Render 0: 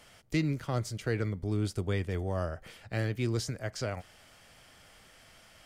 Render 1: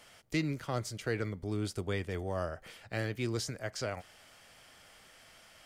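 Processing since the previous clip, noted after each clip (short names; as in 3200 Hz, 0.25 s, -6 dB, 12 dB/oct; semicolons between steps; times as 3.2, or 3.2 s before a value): low shelf 230 Hz -7 dB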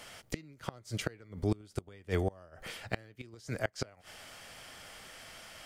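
flipped gate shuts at -26 dBFS, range -27 dB; gain +7.5 dB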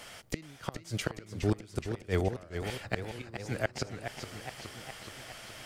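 warbling echo 0.418 s, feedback 67%, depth 162 cents, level -8 dB; gain +2 dB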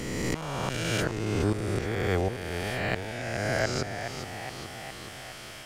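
spectral swells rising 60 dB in 2.21 s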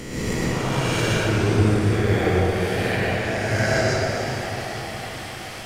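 reverb RT60 3.0 s, pre-delay 93 ms, DRR -7 dB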